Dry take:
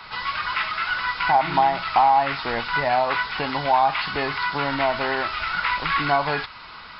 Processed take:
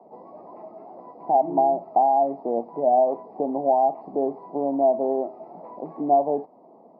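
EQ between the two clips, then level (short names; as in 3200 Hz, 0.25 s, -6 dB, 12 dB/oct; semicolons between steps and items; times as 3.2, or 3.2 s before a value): HPF 240 Hz 24 dB/oct; elliptic low-pass 710 Hz, stop band 50 dB; +5.5 dB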